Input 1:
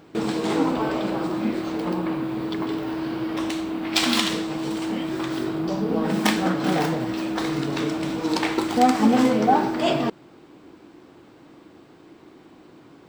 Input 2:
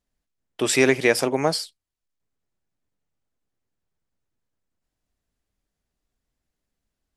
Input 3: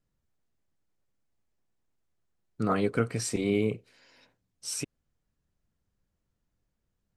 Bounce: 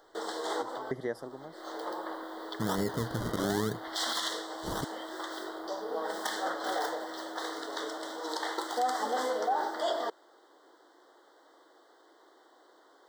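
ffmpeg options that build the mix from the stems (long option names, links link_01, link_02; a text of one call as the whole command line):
ffmpeg -i stem1.wav -i stem2.wav -i stem3.wav -filter_complex "[0:a]highpass=frequency=470:width=0.5412,highpass=frequency=470:width=1.3066,volume=-5dB[link_01];[1:a]equalizer=frequency=7700:width=0.31:gain=-14,aeval=exprs='val(0)*pow(10,-26*if(lt(mod(1.1*n/s,1),2*abs(1.1)/1000),1-mod(1.1*n/s,1)/(2*abs(1.1)/1000),(mod(1.1*n/s,1)-2*abs(1.1)/1000)/(1-2*abs(1.1)/1000))/20)':channel_layout=same,volume=-9dB,asplit=2[link_02][link_03];[2:a]acrusher=samples=35:mix=1:aa=0.000001:lfo=1:lforange=35:lforate=0.98,volume=-1dB[link_04];[link_03]apad=whole_len=577110[link_05];[link_01][link_05]sidechaincompress=threshold=-55dB:ratio=6:attack=22:release=208[link_06];[link_06][link_02][link_04]amix=inputs=3:normalize=0,asuperstop=centerf=2500:order=8:qfactor=2.2,alimiter=limit=-21dB:level=0:latency=1:release=54" out.wav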